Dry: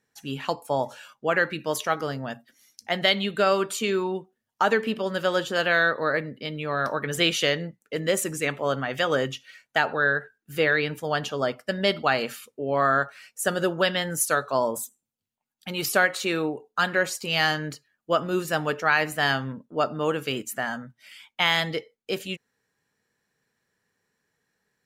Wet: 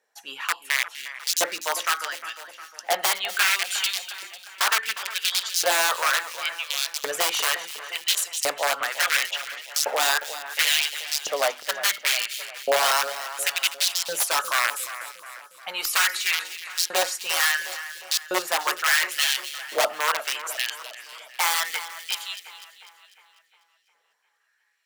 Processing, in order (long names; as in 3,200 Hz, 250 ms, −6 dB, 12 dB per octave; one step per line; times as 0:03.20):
high-pass filter 130 Hz 12 dB per octave
mains-hum notches 50/100/150/200/250/300/350 Hz
wrap-around overflow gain 17.5 dB
auto-filter high-pass saw up 0.71 Hz 550–5,900 Hz
on a send: echo with a time of its own for lows and highs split 2,400 Hz, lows 356 ms, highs 248 ms, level −12.5 dB
on the sum: level +1.5 dB